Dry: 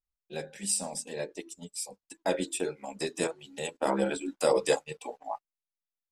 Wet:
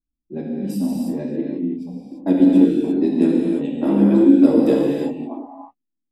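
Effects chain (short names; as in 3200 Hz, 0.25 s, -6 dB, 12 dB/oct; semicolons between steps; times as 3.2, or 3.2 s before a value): low-pass opened by the level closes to 350 Hz, open at -27.5 dBFS; EQ curve 130 Hz 0 dB, 280 Hz +15 dB, 450 Hz -6 dB, 1300 Hz -14 dB, 3700 Hz -14 dB, 8900 Hz -27 dB, 13000 Hz 0 dB; non-linear reverb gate 0.37 s flat, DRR -3.5 dB; gain +7 dB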